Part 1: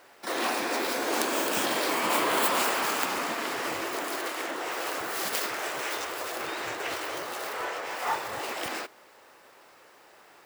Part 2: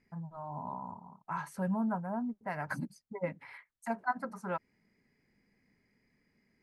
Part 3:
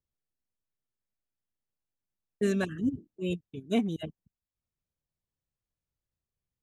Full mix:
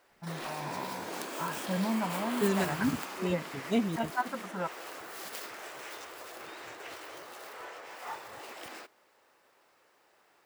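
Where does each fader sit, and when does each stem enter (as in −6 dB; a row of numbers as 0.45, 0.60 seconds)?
−11.5, +1.0, −1.0 decibels; 0.00, 0.10, 0.00 seconds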